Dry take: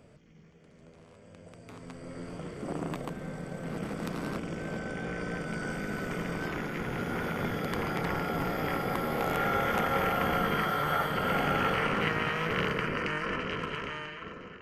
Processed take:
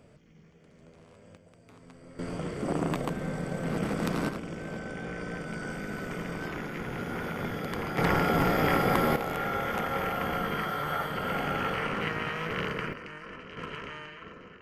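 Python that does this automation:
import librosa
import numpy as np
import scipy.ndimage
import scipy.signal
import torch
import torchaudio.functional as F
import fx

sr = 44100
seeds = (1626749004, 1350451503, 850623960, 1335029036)

y = fx.gain(x, sr, db=fx.steps((0.0, 0.0), (1.37, -7.0), (2.19, 5.5), (4.29, -1.5), (7.98, 6.5), (9.16, -2.5), (12.93, -11.0), (13.57, -3.5)))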